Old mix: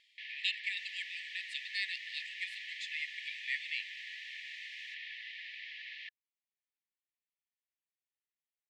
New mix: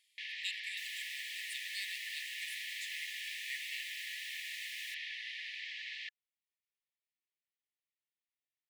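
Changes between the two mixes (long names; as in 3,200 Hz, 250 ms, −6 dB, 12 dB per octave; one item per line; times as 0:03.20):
speech −10.0 dB
master: remove high-frequency loss of the air 170 metres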